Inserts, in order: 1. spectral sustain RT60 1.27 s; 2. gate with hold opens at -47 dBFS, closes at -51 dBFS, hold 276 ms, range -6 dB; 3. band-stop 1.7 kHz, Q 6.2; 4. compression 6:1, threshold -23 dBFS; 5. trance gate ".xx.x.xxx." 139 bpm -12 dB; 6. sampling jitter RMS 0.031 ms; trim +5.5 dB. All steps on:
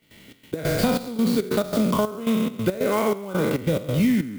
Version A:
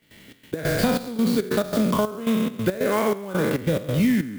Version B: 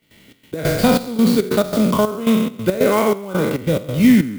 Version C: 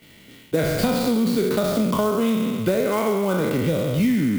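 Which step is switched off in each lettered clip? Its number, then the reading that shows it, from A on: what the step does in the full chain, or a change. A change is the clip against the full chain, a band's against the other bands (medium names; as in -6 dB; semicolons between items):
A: 3, 2 kHz band +2.5 dB; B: 4, mean gain reduction 5.0 dB; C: 5, crest factor change -2.0 dB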